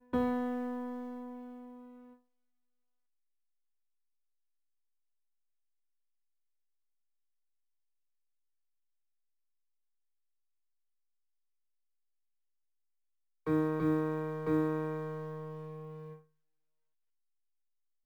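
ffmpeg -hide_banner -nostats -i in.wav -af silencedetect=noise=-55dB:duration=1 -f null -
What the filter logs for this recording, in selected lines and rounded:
silence_start: 2.16
silence_end: 13.46 | silence_duration: 11.31
silence_start: 16.22
silence_end: 18.06 | silence_duration: 1.84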